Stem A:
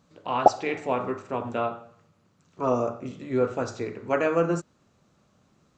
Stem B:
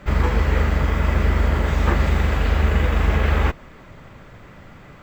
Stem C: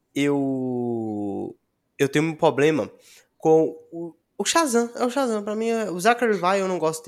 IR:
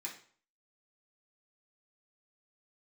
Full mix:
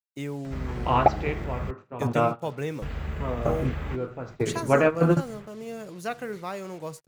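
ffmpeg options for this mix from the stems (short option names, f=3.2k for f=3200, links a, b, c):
-filter_complex "[0:a]lowpass=3.4k,acontrast=35,adelay=600,volume=-1dB[a];[1:a]acompressor=mode=upward:threshold=-25dB:ratio=2.5,adelay=450,volume=-15.5dB,asplit=3[b][c][d];[b]atrim=end=1.71,asetpts=PTS-STARTPTS,afade=t=out:st=1.706:d=0.004:c=hsin[e];[c]atrim=start=1.71:end=2.82,asetpts=PTS-STARTPTS,volume=0[f];[d]atrim=start=2.82,asetpts=PTS-STARTPTS,afade=t=in:d=0.004:c=hsin[g];[e][f][g]concat=n=3:v=0:a=1[h];[2:a]acrusher=bits=5:mix=0:aa=0.5,volume=-14dB,asplit=2[i][j];[j]apad=whole_len=281294[k];[a][k]sidechaingate=range=-13dB:threshold=-40dB:ratio=16:detection=peak[l];[l][h][i]amix=inputs=3:normalize=0,agate=range=-11dB:threshold=-44dB:ratio=16:detection=peak,equalizer=f=140:t=o:w=0.54:g=11"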